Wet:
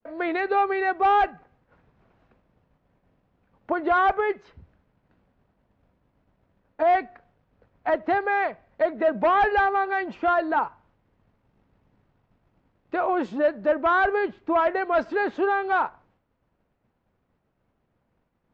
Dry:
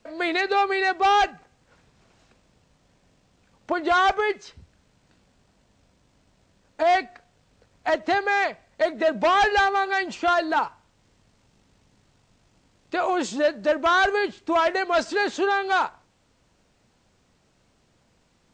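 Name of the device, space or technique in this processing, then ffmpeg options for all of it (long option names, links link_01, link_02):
hearing-loss simulation: -af "lowpass=1700,agate=range=-33dB:threshold=-58dB:ratio=3:detection=peak"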